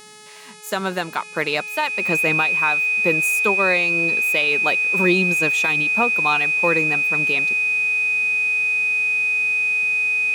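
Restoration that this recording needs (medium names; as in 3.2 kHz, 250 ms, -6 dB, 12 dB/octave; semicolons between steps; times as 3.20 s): de-hum 425.2 Hz, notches 25; band-stop 2.5 kHz, Q 30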